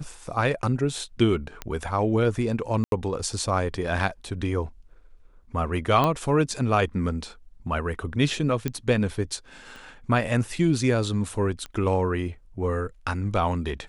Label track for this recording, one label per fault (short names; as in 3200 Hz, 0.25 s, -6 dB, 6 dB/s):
1.620000	1.620000	pop -16 dBFS
2.840000	2.920000	gap 82 ms
6.040000	6.040000	pop -11 dBFS
8.680000	8.680000	pop -13 dBFS
9.760000	9.760000	pop
11.660000	11.660000	pop -22 dBFS